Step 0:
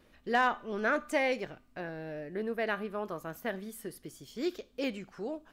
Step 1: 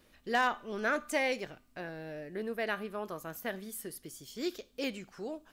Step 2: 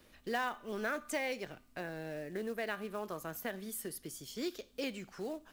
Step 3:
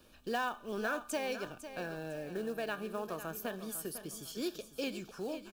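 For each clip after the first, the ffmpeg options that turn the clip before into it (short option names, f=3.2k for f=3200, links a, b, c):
-af "highshelf=f=3.7k:g=9,volume=-2.5dB"
-filter_complex "[0:a]acrossover=split=200|4700[a][b][c];[b]acrusher=bits=5:mode=log:mix=0:aa=0.000001[d];[a][d][c]amix=inputs=3:normalize=0,acompressor=threshold=-39dB:ratio=2,volume=1.5dB"
-filter_complex "[0:a]asuperstop=centerf=2000:order=4:qfactor=4.3,asplit=2[a][b];[b]aecho=0:1:502|1004|1506|2008:0.266|0.0931|0.0326|0.0114[c];[a][c]amix=inputs=2:normalize=0,volume=1dB"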